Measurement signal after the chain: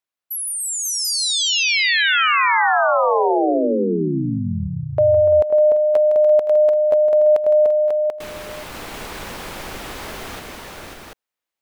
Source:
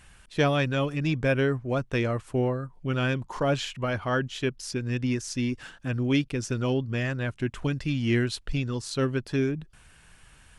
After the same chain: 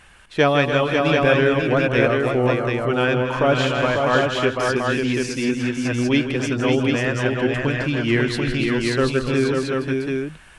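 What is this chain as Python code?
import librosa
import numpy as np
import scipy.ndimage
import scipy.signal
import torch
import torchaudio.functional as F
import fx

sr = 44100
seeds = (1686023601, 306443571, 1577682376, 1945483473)

p1 = fx.bass_treble(x, sr, bass_db=-8, treble_db=-7)
p2 = p1 + fx.echo_multitap(p1, sr, ms=(161, 292, 341, 519, 542, 737), db=(-10.0, -10.0, -13.5, -16.5, -4.5, -4.0), dry=0)
y = F.gain(torch.from_numpy(p2), 8.0).numpy()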